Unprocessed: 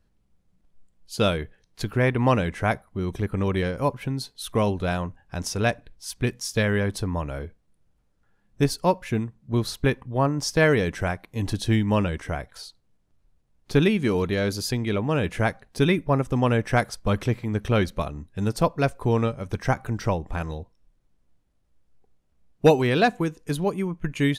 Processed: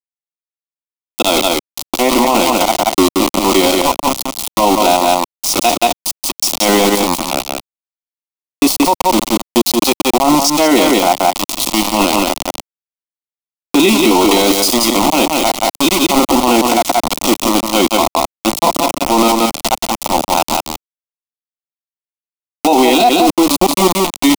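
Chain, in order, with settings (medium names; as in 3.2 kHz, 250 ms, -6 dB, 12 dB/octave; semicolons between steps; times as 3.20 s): spectrogram pixelated in time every 50 ms; high-pass 330 Hz 24 dB/octave; treble shelf 9 kHz -3.5 dB; comb of notches 590 Hz; slow attack 113 ms; small samples zeroed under -32 dBFS; static phaser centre 440 Hz, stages 6; delay 178 ms -8 dB; loudness maximiser +35.5 dB; trim -1 dB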